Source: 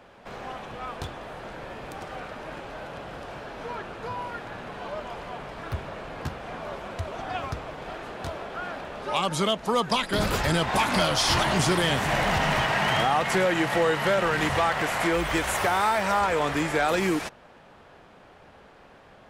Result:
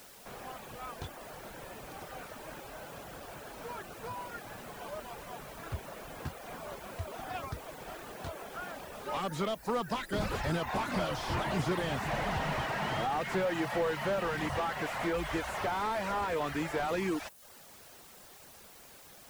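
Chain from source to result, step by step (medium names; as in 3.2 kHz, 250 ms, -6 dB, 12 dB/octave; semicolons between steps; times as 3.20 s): added noise white -47 dBFS; reverb removal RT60 0.55 s; slew-rate limiter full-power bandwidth 71 Hz; trim -6.5 dB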